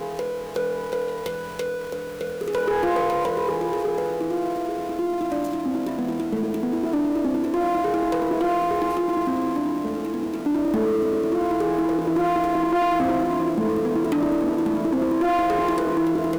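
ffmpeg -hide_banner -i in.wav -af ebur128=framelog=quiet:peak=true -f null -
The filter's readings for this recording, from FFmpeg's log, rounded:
Integrated loudness:
  I:         -23.5 LUFS
  Threshold: -33.5 LUFS
Loudness range:
  LRA:         3.7 LU
  Threshold: -43.5 LUFS
  LRA low:   -25.6 LUFS
  LRA high:  -21.9 LUFS
True peak:
  Peak:      -16.6 dBFS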